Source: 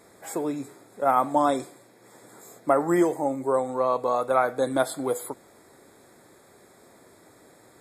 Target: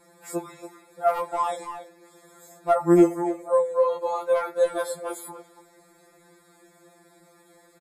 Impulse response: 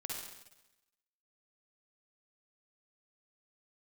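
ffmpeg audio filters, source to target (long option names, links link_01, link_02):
-filter_complex "[0:a]asplit=2[link_01][link_02];[link_02]adelay=280,highpass=300,lowpass=3400,asoftclip=type=hard:threshold=-16dB,volume=-10dB[link_03];[link_01][link_03]amix=inputs=2:normalize=0,volume=11.5dB,asoftclip=hard,volume=-11.5dB,afftfilt=real='re*2.83*eq(mod(b,8),0)':imag='im*2.83*eq(mod(b,8),0)':win_size=2048:overlap=0.75"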